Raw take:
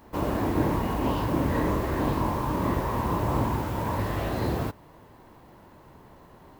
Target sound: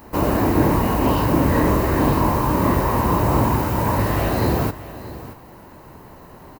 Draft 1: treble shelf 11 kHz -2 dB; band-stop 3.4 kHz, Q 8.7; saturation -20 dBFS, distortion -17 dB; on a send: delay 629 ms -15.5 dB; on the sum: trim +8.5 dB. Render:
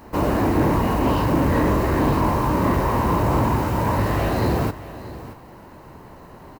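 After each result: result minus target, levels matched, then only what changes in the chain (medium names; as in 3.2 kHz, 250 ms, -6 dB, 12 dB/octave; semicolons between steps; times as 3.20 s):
saturation: distortion +11 dB; 8 kHz band -3.0 dB
change: saturation -12.5 dBFS, distortion -28 dB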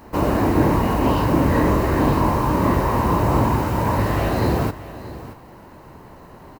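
8 kHz band -3.0 dB
change: treble shelf 11 kHz +8.5 dB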